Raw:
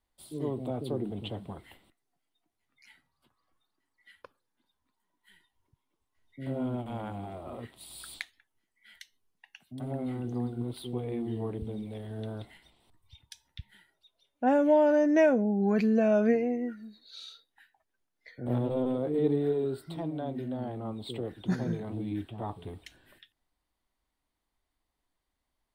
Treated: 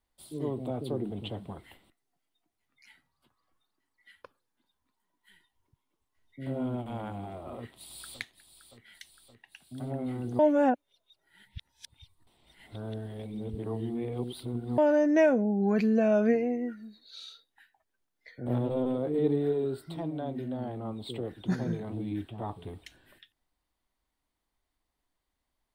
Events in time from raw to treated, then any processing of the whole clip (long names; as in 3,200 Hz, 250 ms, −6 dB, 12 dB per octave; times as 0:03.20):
0:07.57–0:08.20: delay throw 570 ms, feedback 70%, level −11.5 dB
0:10.39–0:14.78: reverse